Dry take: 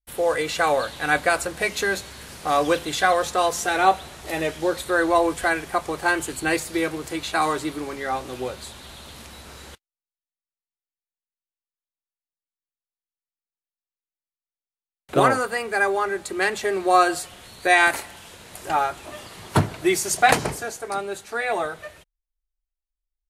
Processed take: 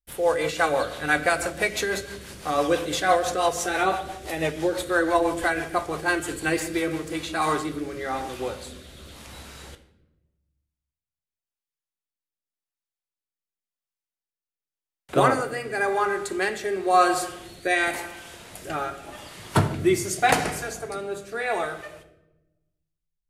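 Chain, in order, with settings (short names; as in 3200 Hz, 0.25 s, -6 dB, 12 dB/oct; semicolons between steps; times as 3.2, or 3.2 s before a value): notch 4100 Hz, Q 26; on a send at -7 dB: reverb RT60 1.0 s, pre-delay 6 ms; on the sum: rotary speaker horn 6 Hz, later 0.9 Hz, at 6.8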